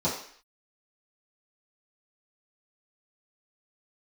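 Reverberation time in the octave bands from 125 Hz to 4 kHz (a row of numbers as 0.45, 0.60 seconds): 0.35, 0.50, 0.50, 0.55, 0.65, 0.60 seconds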